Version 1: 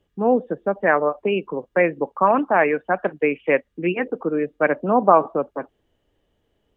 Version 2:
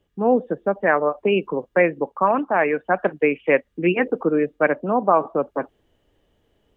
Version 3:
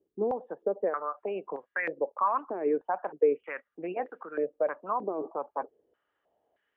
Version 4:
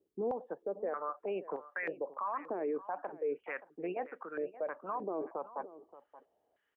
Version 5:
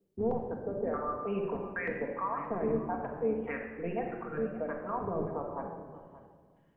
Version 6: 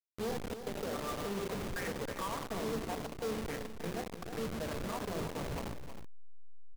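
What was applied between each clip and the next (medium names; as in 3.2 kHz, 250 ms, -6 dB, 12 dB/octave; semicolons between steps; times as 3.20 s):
gain riding within 4 dB 0.5 s
peak limiter -14 dBFS, peak gain reduction 10.5 dB; step-sequenced band-pass 3.2 Hz 370–1700 Hz; trim +2.5 dB
peak limiter -25.5 dBFS, peak gain reduction 11.5 dB; delay 576 ms -16.5 dB; trim -2.5 dB
octave divider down 1 oct, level +1 dB; reverberation RT60 1.6 s, pre-delay 4 ms, DRR 1 dB
send-on-delta sampling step -31.5 dBFS; saturation -32 dBFS, distortion -11 dB; delay 315 ms -10 dB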